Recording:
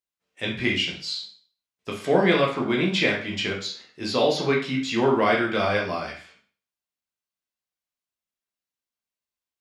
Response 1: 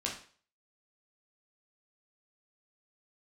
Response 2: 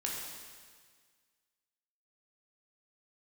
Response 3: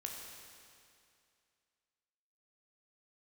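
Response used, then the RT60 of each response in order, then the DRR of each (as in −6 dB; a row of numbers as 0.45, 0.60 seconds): 1; 0.45, 1.7, 2.4 seconds; −3.0, −3.0, 0.0 decibels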